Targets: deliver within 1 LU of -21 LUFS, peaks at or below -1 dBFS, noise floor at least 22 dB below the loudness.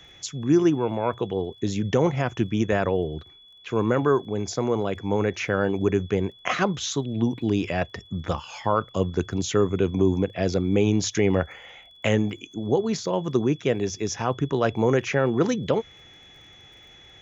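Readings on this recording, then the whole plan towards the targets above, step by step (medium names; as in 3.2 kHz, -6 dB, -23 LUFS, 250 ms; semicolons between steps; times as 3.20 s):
tick rate 29 per s; steady tone 3.4 kHz; tone level -49 dBFS; loudness -25.0 LUFS; peak level -9.0 dBFS; loudness target -21.0 LUFS
-> de-click; band-stop 3.4 kHz, Q 30; trim +4 dB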